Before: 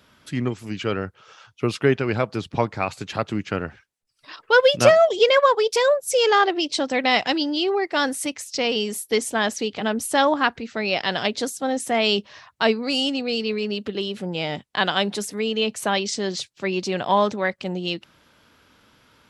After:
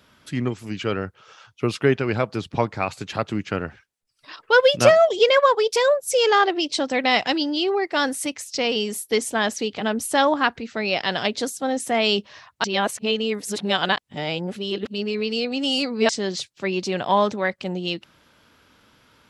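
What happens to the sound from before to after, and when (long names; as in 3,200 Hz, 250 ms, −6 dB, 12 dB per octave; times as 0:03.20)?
0:12.64–0:16.09: reverse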